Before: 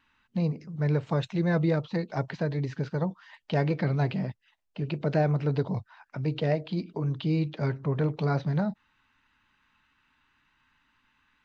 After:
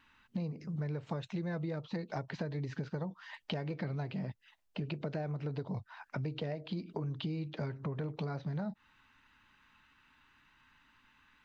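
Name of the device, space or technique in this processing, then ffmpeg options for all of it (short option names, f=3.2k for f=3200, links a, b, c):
serial compression, leveller first: -af "acompressor=threshold=-34dB:ratio=1.5,acompressor=threshold=-37dB:ratio=6,volume=2.5dB"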